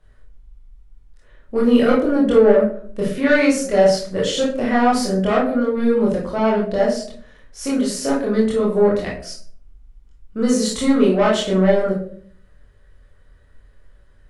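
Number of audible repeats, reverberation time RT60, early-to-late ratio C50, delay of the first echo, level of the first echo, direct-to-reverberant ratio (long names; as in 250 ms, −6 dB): no echo audible, 0.50 s, 4.5 dB, no echo audible, no echo audible, −5.5 dB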